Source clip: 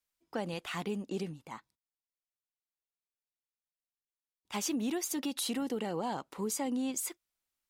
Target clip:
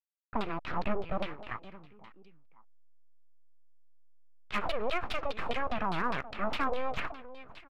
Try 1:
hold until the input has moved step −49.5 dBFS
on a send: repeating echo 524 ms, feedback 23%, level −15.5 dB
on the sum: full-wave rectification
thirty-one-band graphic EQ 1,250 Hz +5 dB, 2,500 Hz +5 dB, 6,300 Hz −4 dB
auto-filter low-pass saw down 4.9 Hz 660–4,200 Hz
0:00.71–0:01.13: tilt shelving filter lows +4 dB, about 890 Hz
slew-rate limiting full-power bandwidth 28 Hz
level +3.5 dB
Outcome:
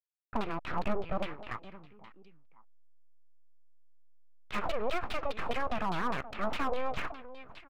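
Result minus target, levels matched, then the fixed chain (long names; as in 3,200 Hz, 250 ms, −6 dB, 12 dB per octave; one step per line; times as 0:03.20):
slew-rate limiting: distortion +12 dB
hold until the input has moved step −49.5 dBFS
on a send: repeating echo 524 ms, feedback 23%, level −15.5 dB
on the sum: full-wave rectification
thirty-one-band graphic EQ 1,250 Hz +5 dB, 2,500 Hz +5 dB, 6,300 Hz −4 dB
auto-filter low-pass saw down 4.9 Hz 660–4,200 Hz
0:00.71–0:01.13: tilt shelving filter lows +4 dB, about 890 Hz
slew-rate limiting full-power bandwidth 58 Hz
level +3.5 dB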